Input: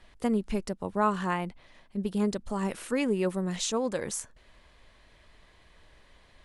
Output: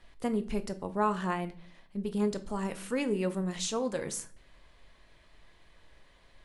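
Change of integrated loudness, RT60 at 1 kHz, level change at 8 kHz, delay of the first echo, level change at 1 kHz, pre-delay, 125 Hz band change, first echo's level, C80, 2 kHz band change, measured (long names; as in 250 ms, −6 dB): −2.5 dB, 0.40 s, −2.5 dB, no echo audible, −2.5 dB, 6 ms, −2.0 dB, no echo audible, 20.5 dB, −3.0 dB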